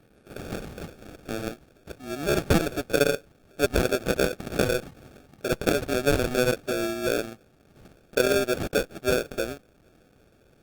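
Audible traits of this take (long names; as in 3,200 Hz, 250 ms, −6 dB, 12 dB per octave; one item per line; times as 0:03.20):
aliases and images of a low sample rate 1,000 Hz, jitter 0%
Opus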